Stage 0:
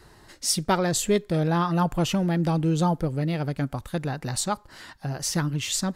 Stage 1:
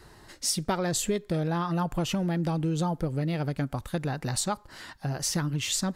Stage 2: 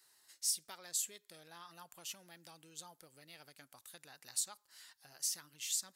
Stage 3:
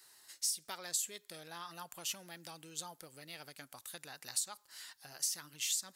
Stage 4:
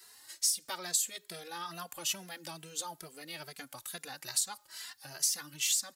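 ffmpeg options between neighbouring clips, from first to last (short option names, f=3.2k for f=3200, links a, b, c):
-af "acompressor=threshold=-24dB:ratio=6"
-af "aderivative,volume=-6dB"
-af "acompressor=threshold=-39dB:ratio=6,volume=7dB"
-filter_complex "[0:a]asplit=2[a][b];[b]adelay=2.6,afreqshift=2.3[c];[a][c]amix=inputs=2:normalize=1,volume=8.5dB"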